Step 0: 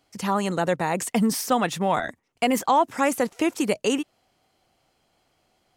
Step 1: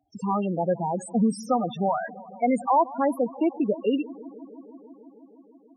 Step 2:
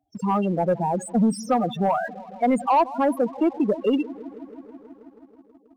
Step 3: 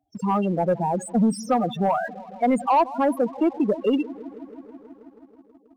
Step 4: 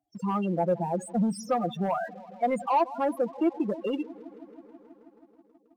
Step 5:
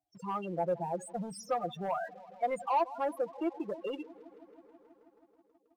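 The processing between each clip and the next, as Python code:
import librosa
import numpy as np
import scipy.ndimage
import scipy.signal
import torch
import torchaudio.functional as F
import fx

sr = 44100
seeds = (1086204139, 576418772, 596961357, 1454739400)

y1 = fx.echo_bbd(x, sr, ms=161, stages=4096, feedback_pct=83, wet_db=-19.0)
y1 = fx.spec_topn(y1, sr, count=8)
y2 = fx.leveller(y1, sr, passes=1)
y3 = y2
y4 = fx.low_shelf(y3, sr, hz=77.0, db=-9.0)
y4 = y4 + 0.48 * np.pad(y4, (int(5.8 * sr / 1000.0), 0))[:len(y4)]
y4 = y4 * 10.0 ** (-6.0 / 20.0)
y5 = fx.peak_eq(y4, sr, hz=230.0, db=-13.5, octaves=0.64)
y5 = y5 * 10.0 ** (-4.5 / 20.0)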